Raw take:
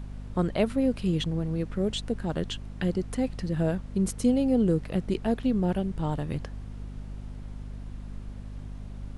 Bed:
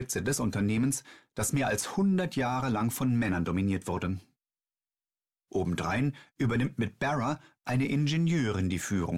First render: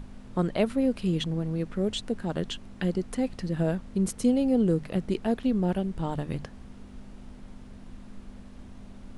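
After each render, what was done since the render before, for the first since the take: hum notches 50/100/150 Hz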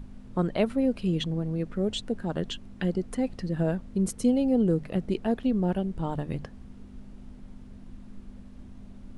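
noise reduction 6 dB, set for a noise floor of -47 dBFS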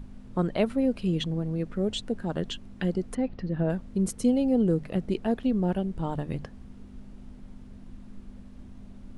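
3.15–3.70 s: distance through air 200 m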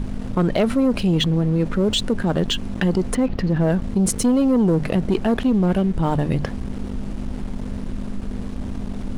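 waveshaping leveller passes 2; level flattener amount 50%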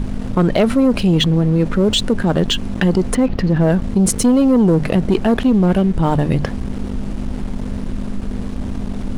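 trim +4.5 dB

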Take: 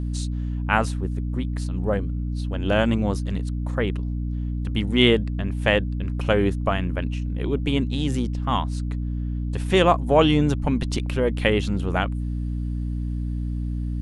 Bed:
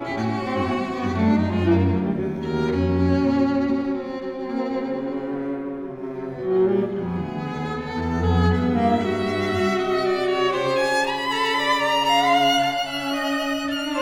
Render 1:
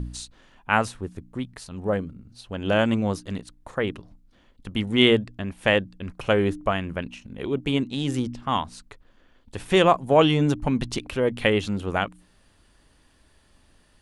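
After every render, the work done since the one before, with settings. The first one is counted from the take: de-hum 60 Hz, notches 5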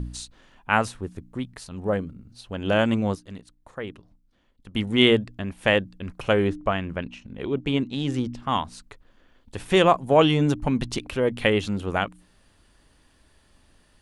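3.15–4.74 s: gain -8 dB; 6.47–8.34 s: distance through air 63 m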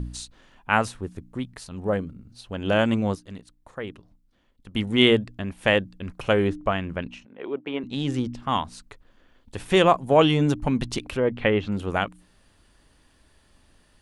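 7.25–7.84 s: band-pass 390–2200 Hz; 11.17–11.72 s: low-pass 2.5 kHz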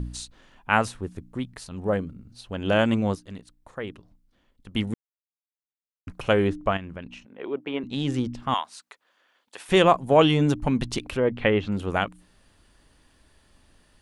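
4.94–6.07 s: mute; 6.77–7.27 s: compression 2:1, threshold -38 dBFS; 8.54–9.69 s: high-pass 750 Hz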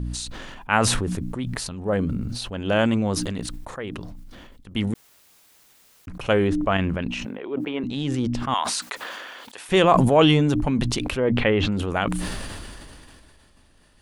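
decay stretcher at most 23 dB/s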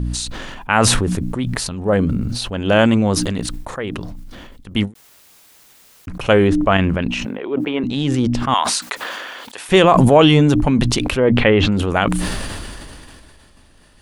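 loudness maximiser +7 dB; endings held to a fixed fall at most 290 dB/s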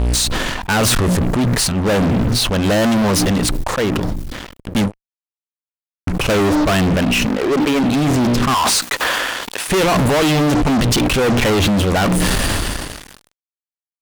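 fuzz box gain 28 dB, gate -36 dBFS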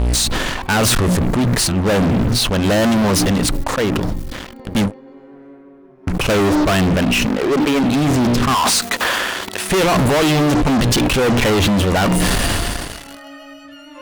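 add bed -13.5 dB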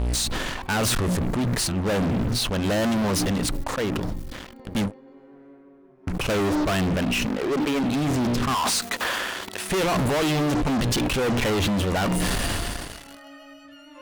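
trim -8 dB

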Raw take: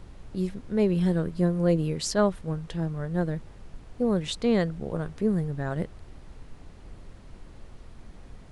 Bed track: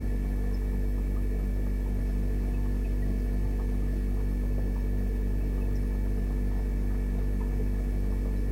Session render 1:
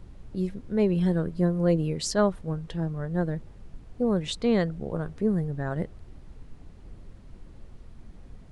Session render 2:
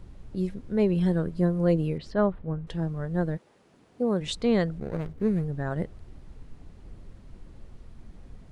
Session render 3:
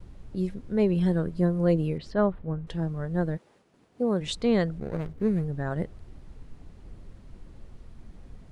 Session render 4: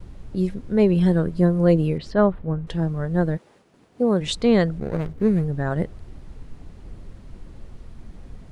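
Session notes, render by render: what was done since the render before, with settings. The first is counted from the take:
noise reduction 6 dB, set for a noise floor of -48 dBFS
1.98–2.67 s: distance through air 410 m; 3.36–4.20 s: high-pass 470 Hz -> 160 Hz; 4.78–5.44 s: median filter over 41 samples
expander -55 dBFS
trim +6 dB

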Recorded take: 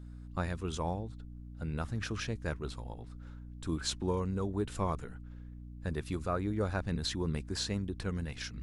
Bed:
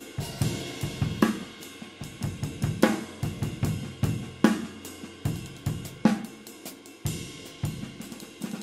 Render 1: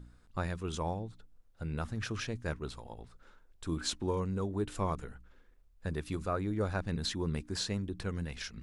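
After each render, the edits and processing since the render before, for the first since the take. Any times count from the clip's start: de-hum 60 Hz, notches 5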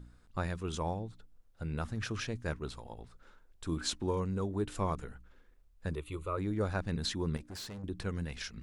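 5.95–6.38 s: static phaser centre 1.1 kHz, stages 8; 7.37–7.84 s: valve stage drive 41 dB, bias 0.55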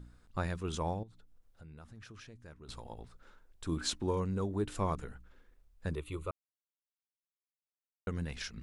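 1.03–2.69 s: compression 2.5:1, threshold -56 dBFS; 6.31–8.07 s: mute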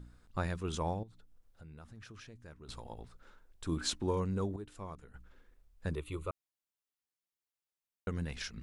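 4.56–5.14 s: gain -12 dB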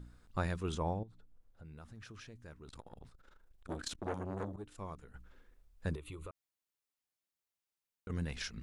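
0.74–1.65 s: treble shelf 2.2 kHz -9 dB; 2.60–4.79 s: transformer saturation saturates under 1 kHz; 5.96–8.10 s: compression 10:1, threshold -42 dBFS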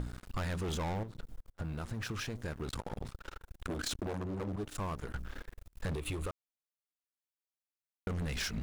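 waveshaping leveller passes 5; compression, threshold -35 dBFS, peak gain reduction 10 dB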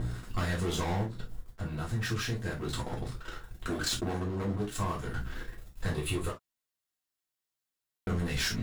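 gated-style reverb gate 90 ms falling, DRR -3.5 dB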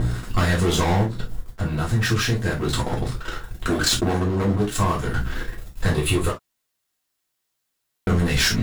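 trim +11.5 dB

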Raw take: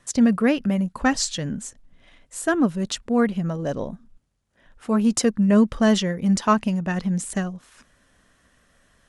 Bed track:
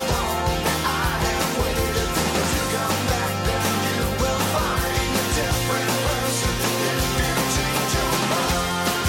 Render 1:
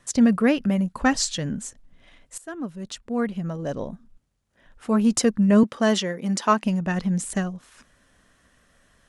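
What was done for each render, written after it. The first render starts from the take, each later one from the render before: 2.38–4.97 s: fade in equal-power, from -18.5 dB; 5.63–6.64 s: high-pass 250 Hz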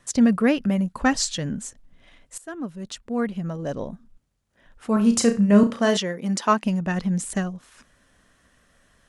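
4.93–5.97 s: flutter echo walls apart 5.9 m, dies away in 0.28 s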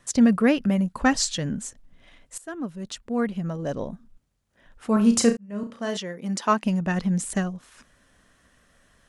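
5.37–6.77 s: fade in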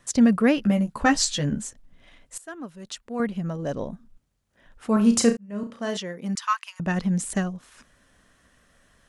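0.56–1.64 s: doubling 14 ms -4.5 dB; 2.40–3.20 s: bass shelf 390 Hz -9 dB; 6.35–6.80 s: elliptic high-pass 1.1 kHz, stop band 80 dB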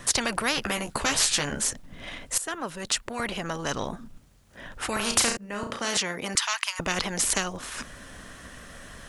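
spectrum-flattening compressor 4:1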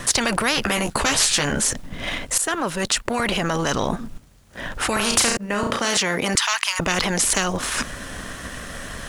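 in parallel at -1 dB: compressor with a negative ratio -34 dBFS, ratio -1; on the sum: waveshaping leveller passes 1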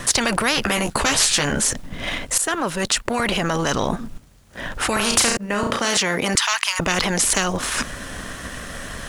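trim +1 dB

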